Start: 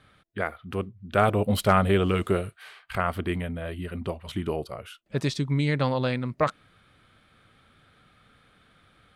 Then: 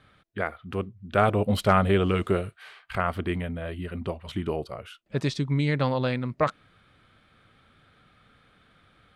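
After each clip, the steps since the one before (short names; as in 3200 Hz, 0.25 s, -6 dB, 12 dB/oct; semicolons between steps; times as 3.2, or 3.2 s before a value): high shelf 10000 Hz -11.5 dB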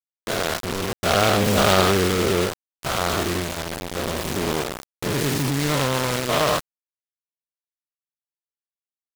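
spectral dilation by 0.24 s; bit-crush 4-bit; noise-modulated delay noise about 2100 Hz, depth 0.092 ms; gain -2 dB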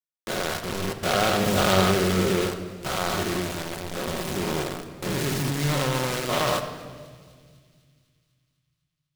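thin delay 0.25 s, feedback 63%, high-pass 2700 Hz, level -21 dB; shoebox room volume 2600 m³, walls mixed, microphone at 1 m; gain -4.5 dB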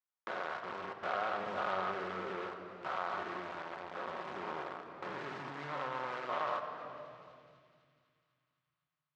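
compressor 2:1, threshold -42 dBFS, peak gain reduction 15 dB; band-pass 1100 Hz, Q 1.4; air absorption 120 m; gain +5 dB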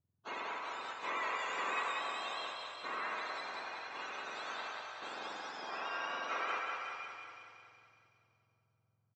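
spectrum mirrored in octaves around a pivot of 1200 Hz; on a send: feedback echo 0.187 s, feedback 57%, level -4 dB; on the sum: downsampling 16000 Hz; gain +1 dB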